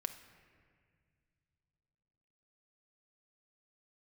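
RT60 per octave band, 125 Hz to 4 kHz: 3.8, 3.3, 2.2, 1.8, 2.0, 1.4 s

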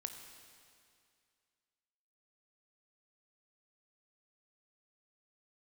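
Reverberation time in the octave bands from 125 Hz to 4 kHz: 2.3, 2.3, 2.3, 2.3, 2.3, 2.2 s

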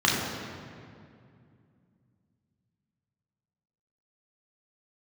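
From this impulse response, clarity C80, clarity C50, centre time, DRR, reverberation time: 2.5 dB, 0.5 dB, 0.1 s, -4.0 dB, 2.3 s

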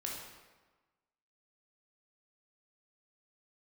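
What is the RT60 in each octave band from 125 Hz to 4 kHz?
1.2, 1.3, 1.3, 1.3, 1.1, 0.90 s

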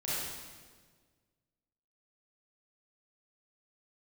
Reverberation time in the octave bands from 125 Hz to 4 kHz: 2.0, 1.9, 1.7, 1.4, 1.3, 1.3 s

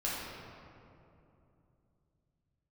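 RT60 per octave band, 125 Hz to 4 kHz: 4.1, 3.7, 3.1, 2.6, 1.9, 1.4 s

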